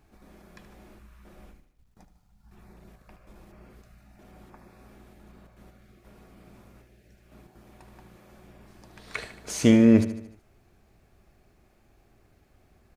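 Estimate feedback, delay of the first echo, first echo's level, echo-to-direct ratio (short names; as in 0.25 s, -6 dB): 53%, 75 ms, -12.5 dB, -11.0 dB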